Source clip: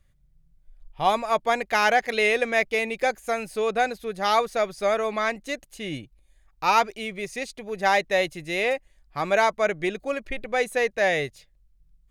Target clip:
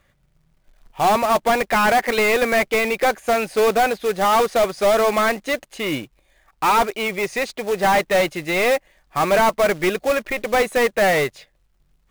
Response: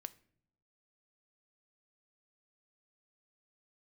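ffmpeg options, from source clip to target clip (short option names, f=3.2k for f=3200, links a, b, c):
-filter_complex "[0:a]asplit=2[a][b];[b]highpass=f=720:p=1,volume=24dB,asoftclip=type=tanh:threshold=-7.5dB[c];[a][c]amix=inputs=2:normalize=0,lowpass=f=1.3k:p=1,volume=-6dB,acrusher=bits=3:mode=log:mix=0:aa=0.000001"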